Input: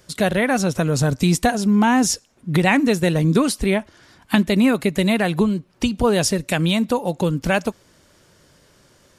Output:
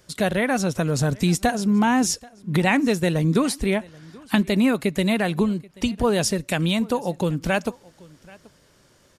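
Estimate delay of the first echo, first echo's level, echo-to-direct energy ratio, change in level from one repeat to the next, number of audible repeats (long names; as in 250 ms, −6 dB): 782 ms, −24.0 dB, −24.0 dB, repeats not evenly spaced, 1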